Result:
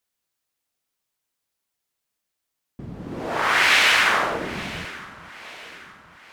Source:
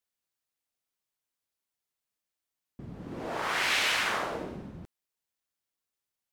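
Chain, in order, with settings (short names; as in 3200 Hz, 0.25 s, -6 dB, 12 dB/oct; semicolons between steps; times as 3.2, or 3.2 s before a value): dynamic EQ 1700 Hz, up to +5 dB, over -39 dBFS, Q 0.72; echo with dull and thin repeats by turns 0.436 s, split 1100 Hz, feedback 67%, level -14 dB; gain +7 dB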